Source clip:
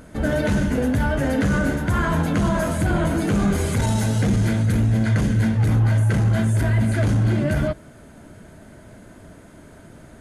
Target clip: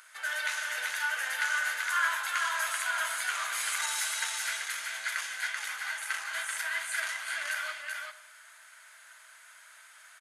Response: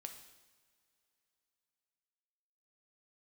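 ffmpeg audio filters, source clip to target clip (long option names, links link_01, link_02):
-filter_complex "[0:a]highpass=frequency=1300:width=0.5412,highpass=frequency=1300:width=1.3066,aecho=1:1:385:0.668,asplit=2[link_01][link_02];[1:a]atrim=start_sample=2205[link_03];[link_02][link_03]afir=irnorm=-1:irlink=0,volume=6.5dB[link_04];[link_01][link_04]amix=inputs=2:normalize=0,volume=-6.5dB"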